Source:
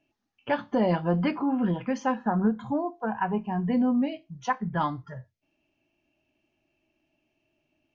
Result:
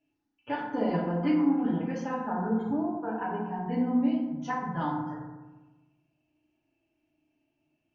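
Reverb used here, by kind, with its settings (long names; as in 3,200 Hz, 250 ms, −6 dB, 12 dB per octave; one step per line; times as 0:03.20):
feedback delay network reverb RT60 1.2 s, low-frequency decay 1.3×, high-frequency decay 0.4×, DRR −5 dB
level −10.5 dB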